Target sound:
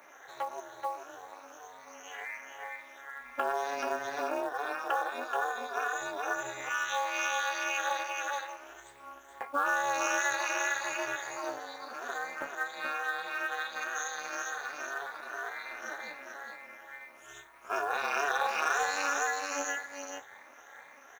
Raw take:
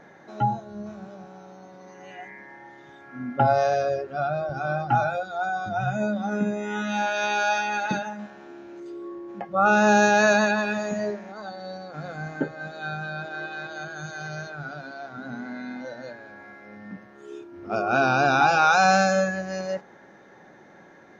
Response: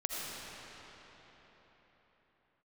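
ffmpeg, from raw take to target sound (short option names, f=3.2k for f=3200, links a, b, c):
-filter_complex "[0:a]afftfilt=real='re*pow(10,10/40*sin(2*PI*(0.94*log(max(b,1)*sr/1024/100)/log(2)-(2.1)*(pts-256)/sr)))':imag='im*pow(10,10/40*sin(2*PI*(0.94*log(max(b,1)*sr/1024/100)/log(2)-(2.1)*(pts-256)/sr)))':win_size=1024:overlap=0.75,highpass=f=700:w=0.5412,highpass=f=700:w=1.3066,asplit=2[a][b];[b]adelay=13,volume=-13dB[c];[a][c]amix=inputs=2:normalize=0,asplit=2[d][e];[e]aecho=0:1:429:0.501[f];[d][f]amix=inputs=2:normalize=0,acontrast=22,aemphasis=mode=production:type=75fm,flanger=delay=8.7:depth=6.6:regen=-37:speed=0.14:shape=sinusoidal,equalizer=f=4.5k:t=o:w=0.38:g=-11.5,bandreject=f=5.1k:w=7.3,acrusher=bits=6:mode=log:mix=0:aa=0.000001,tremolo=f=290:d=0.974,acompressor=threshold=-31dB:ratio=3,volume=1.5dB"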